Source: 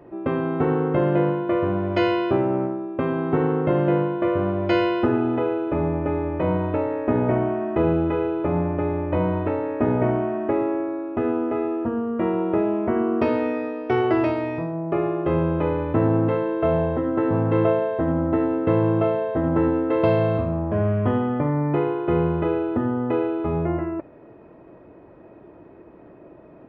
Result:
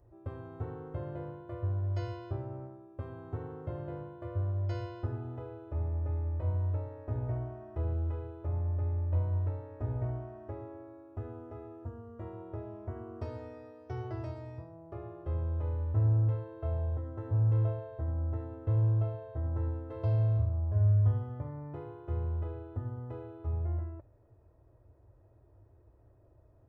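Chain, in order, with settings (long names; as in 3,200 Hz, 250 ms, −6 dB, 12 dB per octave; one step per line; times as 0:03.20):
drawn EQ curve 110 Hz 0 dB, 170 Hz −28 dB, 590 Hz −20 dB, 1,700 Hz −23 dB, 2,500 Hz −29 dB, 5,800 Hz −8 dB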